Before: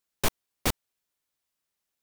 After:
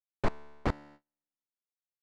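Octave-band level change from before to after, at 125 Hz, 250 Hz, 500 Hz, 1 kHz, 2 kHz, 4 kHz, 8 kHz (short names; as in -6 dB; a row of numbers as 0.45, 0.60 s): -0.5, -0.5, -1.0, -2.0, -6.0, -16.0, -26.5 dB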